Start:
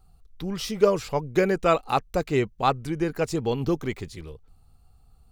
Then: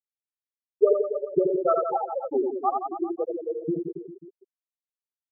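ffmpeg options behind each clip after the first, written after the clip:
ffmpeg -i in.wav -af "afftfilt=real='re*gte(hypot(re,im),0.562)':imag='im*gte(hypot(re,im),0.562)':win_size=1024:overlap=0.75,aecho=1:1:80|172|277.8|399.5|539.4:0.631|0.398|0.251|0.158|0.1" out.wav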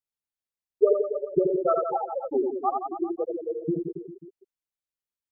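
ffmpeg -i in.wav -af "lowshelf=frequency=150:gain=9,volume=-1.5dB" out.wav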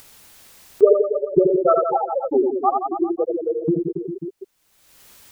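ffmpeg -i in.wav -af "acompressor=mode=upward:threshold=-26dB:ratio=2.5,volume=7dB" out.wav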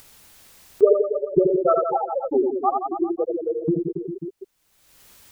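ffmpeg -i in.wav -af "lowshelf=frequency=130:gain=4,volume=-2.5dB" out.wav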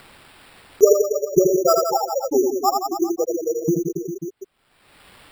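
ffmpeg -i in.wav -af "acrusher=samples=7:mix=1:aa=0.000001,volume=2dB" out.wav

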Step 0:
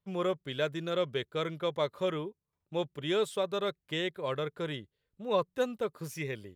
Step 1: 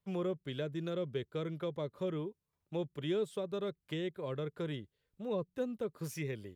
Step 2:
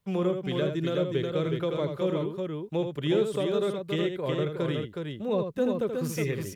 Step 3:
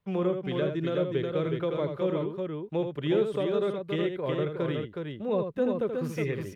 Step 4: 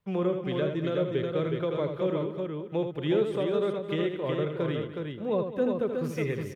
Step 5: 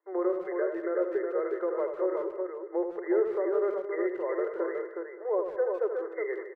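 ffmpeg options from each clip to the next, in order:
ffmpeg -i in.wav -filter_complex "[0:a]acrossover=split=420[link_01][link_02];[link_02]acompressor=threshold=-43dB:ratio=10[link_03];[link_01][link_03]amix=inputs=2:normalize=0" out.wav
ffmpeg -i in.wav -af "aecho=1:1:80|367:0.447|0.596,volume=8dB" out.wav
ffmpeg -i in.wav -af "bass=frequency=250:gain=-2,treble=frequency=4000:gain=-12,bandreject=frequency=7400:width=22" out.wav
ffmpeg -i in.wav -af "aecho=1:1:210|420|630:0.211|0.0761|0.0274" out.wav
ffmpeg -i in.wav -filter_complex "[0:a]afftfilt=real='re*between(b*sr/4096,330,2100)':imag='im*between(b*sr/4096,330,2100)':win_size=4096:overlap=0.75,asplit=2[link_01][link_02];[link_02]adelay=150,highpass=300,lowpass=3400,asoftclip=type=hard:threshold=-25.5dB,volume=-14dB[link_03];[link_01][link_03]amix=inputs=2:normalize=0" out.wav

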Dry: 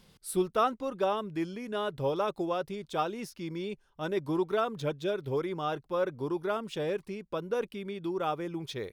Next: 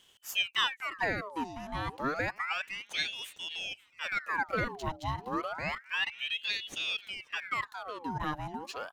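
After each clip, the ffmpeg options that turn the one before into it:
ffmpeg -i in.wav -af "equalizer=frequency=6100:width_type=o:width=0.25:gain=5.5,aecho=1:1:532|1064|1596:0.0708|0.0354|0.0177,aeval=exprs='val(0)*sin(2*PI*1800*n/s+1800*0.75/0.3*sin(2*PI*0.3*n/s))':channel_layout=same" out.wav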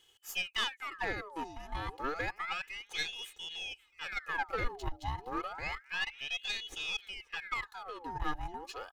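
ffmpeg -i in.wav -af "aecho=1:1:2.4:0.62,asubboost=boost=4.5:cutoff=57,aeval=exprs='(tanh(11.2*val(0)+0.55)-tanh(0.55))/11.2':channel_layout=same,volume=-2.5dB" out.wav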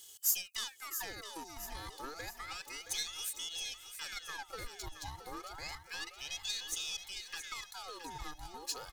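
ffmpeg -i in.wav -af "acompressor=threshold=-47dB:ratio=3,aexciter=amount=6.4:drive=5.4:freq=4000,aecho=1:1:671|1342|2013|2684:0.316|0.133|0.0558|0.0234,volume=1.5dB" out.wav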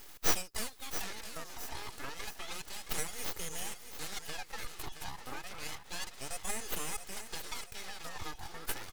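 ffmpeg -i in.wav -af "aeval=exprs='abs(val(0))':channel_layout=same,volume=4.5dB" out.wav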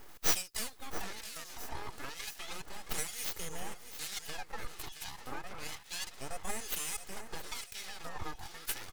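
ffmpeg -i in.wav -filter_complex "[0:a]acrossover=split=1800[link_01][link_02];[link_01]aeval=exprs='val(0)*(1-0.7/2+0.7/2*cos(2*PI*1.1*n/s))':channel_layout=same[link_03];[link_02]aeval=exprs='val(0)*(1-0.7/2-0.7/2*cos(2*PI*1.1*n/s))':channel_layout=same[link_04];[link_03][link_04]amix=inputs=2:normalize=0,volume=3dB" out.wav

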